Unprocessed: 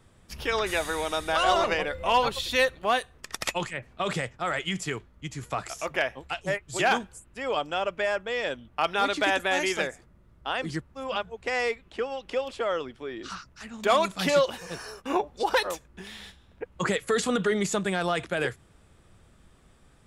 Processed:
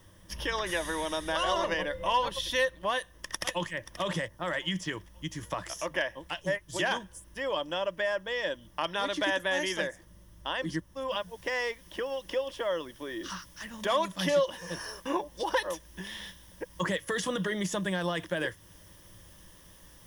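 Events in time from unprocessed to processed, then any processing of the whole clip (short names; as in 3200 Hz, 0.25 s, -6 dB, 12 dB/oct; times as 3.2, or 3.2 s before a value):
2.91–3.68 echo throw 0.53 s, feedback 30%, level -15 dB
4.28–4.92 low-pass opened by the level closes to 1100 Hz, open at -25.5 dBFS
11.11 noise floor step -68 dB -59 dB
whole clip: ripple EQ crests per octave 1.2, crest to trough 10 dB; compressor 1.5:1, threshold -36 dBFS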